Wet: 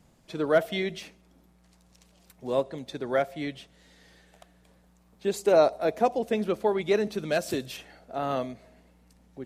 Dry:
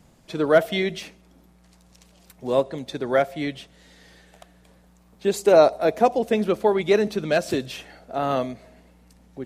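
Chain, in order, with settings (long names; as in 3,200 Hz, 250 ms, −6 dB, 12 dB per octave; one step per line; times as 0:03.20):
0:07.14–0:07.77: high-shelf EQ 8,800 Hz +10 dB
level −5.5 dB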